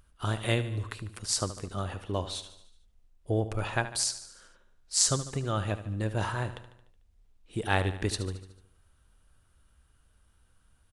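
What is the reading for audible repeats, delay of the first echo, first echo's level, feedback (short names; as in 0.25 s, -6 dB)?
5, 74 ms, -13.0 dB, 56%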